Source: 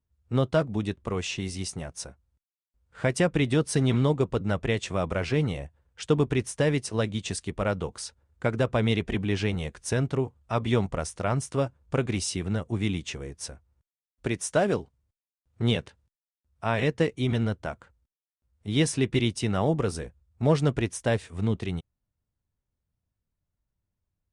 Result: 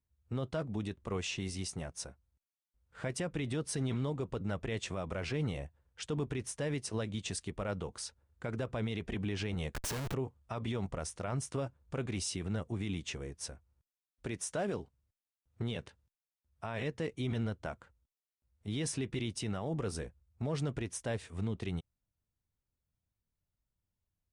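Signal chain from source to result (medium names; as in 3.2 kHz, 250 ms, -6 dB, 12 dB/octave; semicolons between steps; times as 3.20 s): peak limiter -22 dBFS, peak gain reduction 11 dB; 9.74–10.14 s: Schmitt trigger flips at -45 dBFS; trim -5 dB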